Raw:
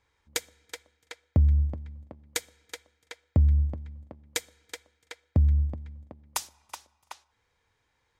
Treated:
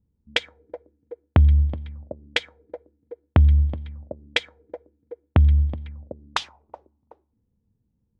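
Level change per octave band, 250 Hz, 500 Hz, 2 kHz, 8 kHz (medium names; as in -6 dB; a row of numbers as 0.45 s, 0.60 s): +5.5 dB, +8.5 dB, +10.5 dB, -10.0 dB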